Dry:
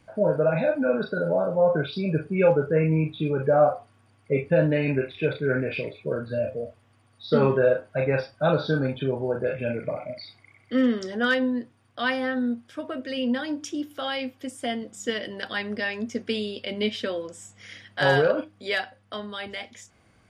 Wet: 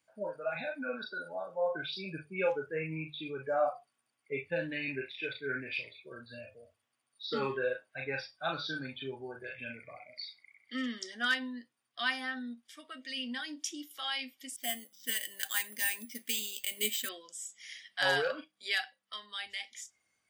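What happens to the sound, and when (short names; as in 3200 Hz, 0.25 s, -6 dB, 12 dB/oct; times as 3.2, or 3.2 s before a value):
14.56–17.09 careless resampling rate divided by 4×, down filtered, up hold
whole clip: tilt +3.5 dB/oct; spectral noise reduction 12 dB; notches 50/100/150 Hz; gain -8 dB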